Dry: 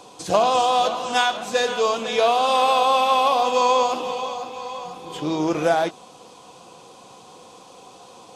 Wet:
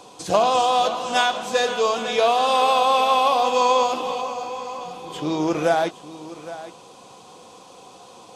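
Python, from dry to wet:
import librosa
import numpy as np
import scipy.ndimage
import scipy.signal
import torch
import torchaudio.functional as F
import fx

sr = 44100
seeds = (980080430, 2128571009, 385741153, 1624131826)

y = fx.peak_eq(x, sr, hz=3500.0, db=-13.0, octaves=0.26, at=(4.21, 4.81))
y = y + 10.0 ** (-15.5 / 20.0) * np.pad(y, (int(814 * sr / 1000.0), 0))[:len(y)]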